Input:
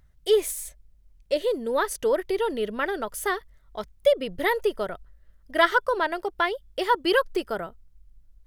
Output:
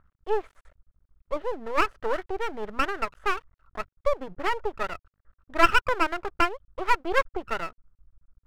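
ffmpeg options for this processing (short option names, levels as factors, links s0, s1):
-af "lowpass=f=1300:t=q:w=5.2,aeval=exprs='max(val(0),0)':c=same,volume=0.75"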